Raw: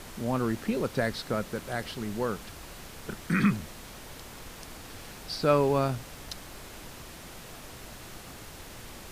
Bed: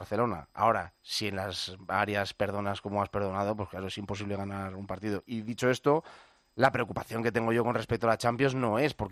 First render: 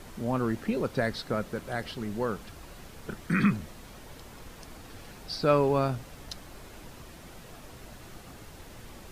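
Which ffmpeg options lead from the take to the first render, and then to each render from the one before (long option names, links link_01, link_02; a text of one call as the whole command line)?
ffmpeg -i in.wav -af "afftdn=noise_reduction=6:noise_floor=-46" out.wav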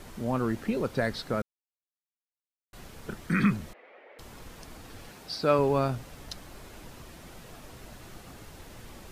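ffmpeg -i in.wav -filter_complex "[0:a]asettb=1/sr,asplit=3[link_01][link_02][link_03];[link_01]atrim=end=3.734[link_04];[link_02]atrim=start=3.73:end=4.19,asetpts=PTS-STARTPTS,afade=type=in:duration=0.004:curve=qsin,afade=type=out:start_time=0.456:duration=0.004:curve=qsin,highpass=frequency=420:width=0.5412,highpass=frequency=420:width=1.3066,equalizer=frequency=520:width_type=q:width=4:gain=4,equalizer=frequency=1000:width_type=q:width=4:gain=-8,equalizer=frequency=1500:width_type=q:width=4:gain=-5,equalizer=frequency=2100:width_type=q:width=4:gain=6,lowpass=frequency=2300:width=0.5412,lowpass=frequency=2300:width=1.3066[link_05];[link_03]atrim=start=4.186[link_06];[link_04][link_05]acrossfade=duration=0.004:curve1=hsin:curve2=qsin[link_07];[link_07][link_06]acrossfade=duration=0.004:curve1=qsin:curve2=hsin,asettb=1/sr,asplit=3[link_08][link_09][link_10];[link_08]atrim=end=5.094[link_11];[link_09]atrim=start=5.09:end=5.59,asetpts=PTS-STARTPTS,afade=type=in:duration=0.004:curve=qsin,afade=type=out:start_time=0.496:duration=0.004:curve=qsin,highpass=frequency=160:poles=1[link_12];[link_10]atrim=start=5.586[link_13];[link_11][link_12]acrossfade=duration=0.004:curve1=hsin:curve2=qsin[link_14];[link_14][link_13]acrossfade=duration=0.004:curve1=qsin:curve2=hsin,asplit=3[link_15][link_16][link_17];[link_15]atrim=end=1.42,asetpts=PTS-STARTPTS,afade=type=out:start_time=1.416:duration=0.004:curve=hsin[link_18];[link_16]atrim=start=1.42:end=2.73,asetpts=PTS-STARTPTS,volume=0[link_19];[link_17]atrim=start=2.73,asetpts=PTS-STARTPTS,afade=type=in:duration=0.004:curve=hsin[link_20];[link_18][link_19][link_20]concat=n=3:v=0:a=1" out.wav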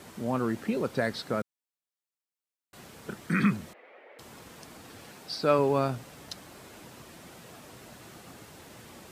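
ffmpeg -i in.wav -af "highpass=120,equalizer=frequency=8000:width=5.3:gain=2.5" out.wav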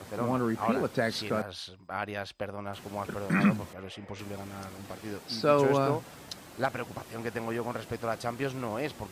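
ffmpeg -i in.wav -i bed.wav -filter_complex "[1:a]volume=-6dB[link_01];[0:a][link_01]amix=inputs=2:normalize=0" out.wav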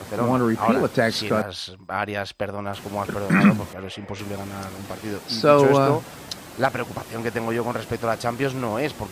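ffmpeg -i in.wav -af "volume=8.5dB" out.wav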